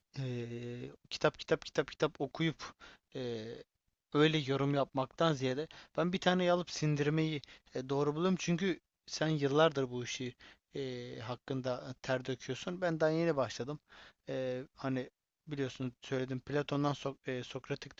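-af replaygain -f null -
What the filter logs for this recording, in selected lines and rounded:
track_gain = +14.7 dB
track_peak = 0.152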